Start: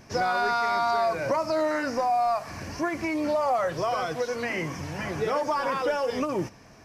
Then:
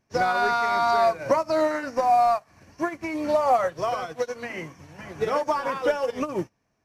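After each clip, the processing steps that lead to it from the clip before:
notch filter 5,000 Hz, Q 12
expander for the loud parts 2.5 to 1, over −41 dBFS
level +6.5 dB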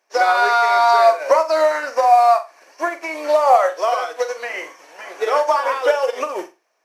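high-pass filter 460 Hz 24 dB per octave
on a send: flutter between parallel walls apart 7.5 metres, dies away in 0.26 s
on the sum: level +7.5 dB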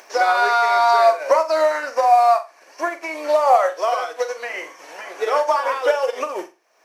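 upward compression, threshold −28 dBFS
level −1.5 dB

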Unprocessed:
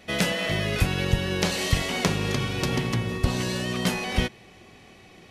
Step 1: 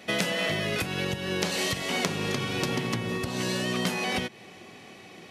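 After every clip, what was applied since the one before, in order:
downward compressor, threshold −27 dBFS, peak gain reduction 12 dB
high-pass filter 150 Hz 12 dB per octave
level +3.5 dB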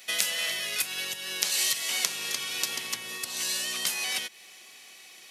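first difference
level +8.5 dB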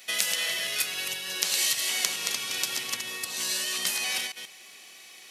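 delay that plays each chunk backwards 135 ms, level −5 dB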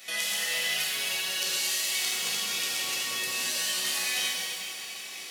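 downward compressor 3 to 1, threshold −37 dBFS, peak gain reduction 13 dB
reverb with rising layers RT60 1.9 s, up +7 semitones, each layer −8 dB, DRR −7 dB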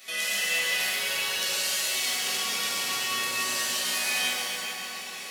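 convolution reverb RT60 3.4 s, pre-delay 6 ms, DRR −4.5 dB
level −2 dB

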